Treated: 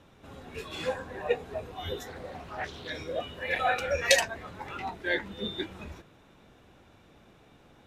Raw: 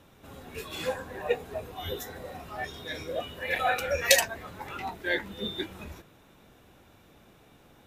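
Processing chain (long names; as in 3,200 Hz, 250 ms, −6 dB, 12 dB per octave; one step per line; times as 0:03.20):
high-frequency loss of the air 50 metres
0:02.07–0:02.90: highs frequency-modulated by the lows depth 0.31 ms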